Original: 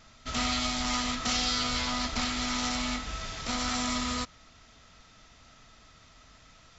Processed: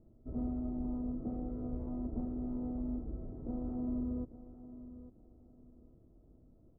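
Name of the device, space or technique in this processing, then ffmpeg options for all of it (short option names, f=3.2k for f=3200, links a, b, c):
under water: -filter_complex "[0:a]asettb=1/sr,asplit=3[a][b][c];[a]atrim=end=0.794[d];[b]atrim=start=0.79:end=1.3,asetpts=PTS-STARTPTS,afade=t=in:d=0.004:c=qsin,afade=t=out:st=0.506:d=0.004:c=qsin,equalizer=f=3.4k:t=o:w=0.97:g=-13.5[e];[c]atrim=start=1.296[f];[d][e]acrossfade=d=0.004:c1=hsin:c2=qsin[g];[g][f]acrossfade=d=0.004:c1=qsin:c2=hsin,lowpass=f=510:w=0.5412,lowpass=f=510:w=1.3066,equalizer=f=340:t=o:w=0.37:g=10.5,aecho=1:1:849|1698|2547:0.2|0.0479|0.0115,volume=-3dB"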